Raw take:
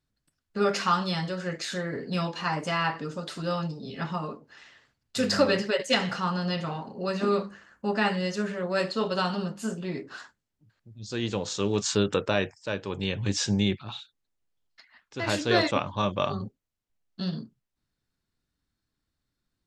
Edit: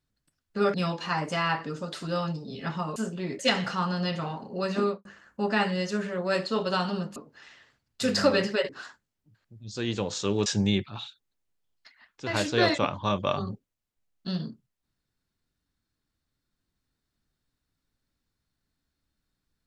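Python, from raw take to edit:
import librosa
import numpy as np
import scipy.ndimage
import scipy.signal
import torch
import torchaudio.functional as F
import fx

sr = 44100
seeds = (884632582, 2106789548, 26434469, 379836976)

y = fx.studio_fade_out(x, sr, start_s=7.25, length_s=0.25)
y = fx.edit(y, sr, fx.cut(start_s=0.74, length_s=1.35),
    fx.swap(start_s=4.31, length_s=1.53, other_s=9.61, other_length_s=0.43),
    fx.cut(start_s=11.81, length_s=1.58), tone=tone)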